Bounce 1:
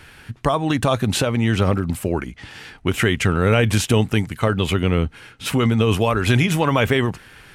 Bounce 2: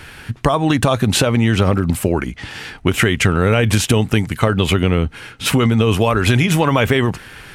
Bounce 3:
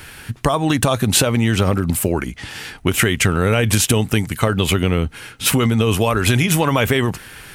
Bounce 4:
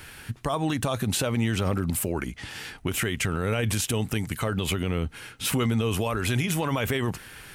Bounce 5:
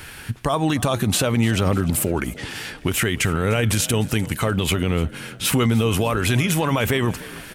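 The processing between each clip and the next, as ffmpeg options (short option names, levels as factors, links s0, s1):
-af "acompressor=threshold=0.126:ratio=6,volume=2.37"
-af "highshelf=f=7300:g=12,volume=0.794"
-af "alimiter=limit=0.316:level=0:latency=1:release=53,volume=0.473"
-filter_complex "[0:a]asplit=5[s0][s1][s2][s3][s4];[s1]adelay=300,afreqshift=46,volume=0.112[s5];[s2]adelay=600,afreqshift=92,volume=0.0519[s6];[s3]adelay=900,afreqshift=138,volume=0.0237[s7];[s4]adelay=1200,afreqshift=184,volume=0.011[s8];[s0][s5][s6][s7][s8]amix=inputs=5:normalize=0,volume=2"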